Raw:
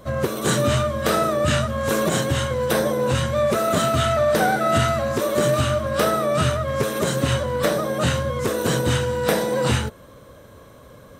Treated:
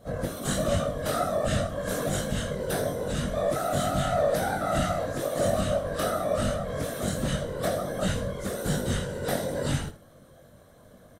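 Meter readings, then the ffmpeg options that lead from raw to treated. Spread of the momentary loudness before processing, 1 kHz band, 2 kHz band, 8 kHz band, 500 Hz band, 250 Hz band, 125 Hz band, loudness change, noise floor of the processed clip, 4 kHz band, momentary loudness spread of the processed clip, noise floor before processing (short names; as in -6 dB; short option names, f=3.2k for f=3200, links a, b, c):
4 LU, -8.0 dB, -9.5 dB, -6.5 dB, -7.0 dB, -6.0 dB, -7.5 dB, -7.5 dB, -54 dBFS, -9.0 dB, 5 LU, -46 dBFS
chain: -af "equalizer=f=160:t=o:w=0.33:g=7,equalizer=f=400:t=o:w=0.33:g=-10,equalizer=f=630:t=o:w=0.33:g=5,equalizer=f=1k:t=o:w=0.33:g=-9,equalizer=f=2.5k:t=o:w=0.33:g=-6,equalizer=f=10k:t=o:w=0.33:g=6,afftfilt=real='hypot(re,im)*cos(2*PI*random(0))':imag='hypot(re,im)*sin(2*PI*random(1))':win_size=512:overlap=0.75,aecho=1:1:21|79:0.596|0.224,volume=-3.5dB"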